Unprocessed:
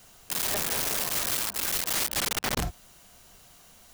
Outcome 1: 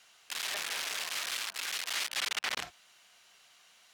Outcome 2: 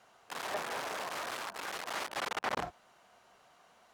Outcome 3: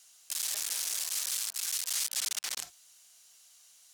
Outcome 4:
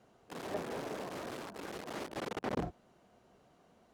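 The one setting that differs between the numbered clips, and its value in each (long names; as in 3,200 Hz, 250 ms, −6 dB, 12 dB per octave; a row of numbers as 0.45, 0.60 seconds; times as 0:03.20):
resonant band-pass, frequency: 2,600, 920, 7,000, 360 Hertz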